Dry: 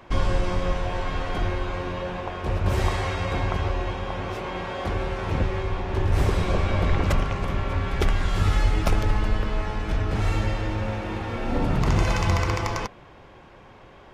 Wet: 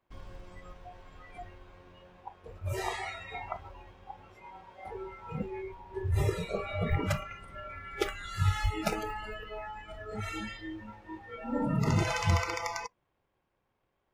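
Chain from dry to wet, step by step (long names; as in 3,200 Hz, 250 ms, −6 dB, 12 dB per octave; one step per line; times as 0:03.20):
mu-law and A-law mismatch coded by A
noise reduction from a noise print of the clip's start 22 dB
level −2 dB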